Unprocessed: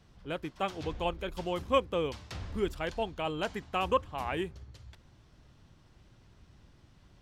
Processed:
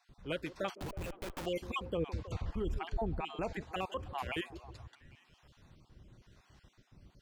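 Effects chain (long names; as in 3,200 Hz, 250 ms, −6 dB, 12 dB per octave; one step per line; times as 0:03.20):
time-frequency cells dropped at random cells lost 33%
0:01.97–0:03.61: spectral tilt −2.5 dB per octave
brickwall limiter −26.5 dBFS, peak gain reduction 11.5 dB
0:00.75–0:01.46: comparator with hysteresis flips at −44 dBFS
two-band tremolo in antiphase 1 Hz, depth 50%, crossover 540 Hz
echo through a band-pass that steps 160 ms, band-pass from 330 Hz, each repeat 0.7 octaves, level −11.5 dB
level +2.5 dB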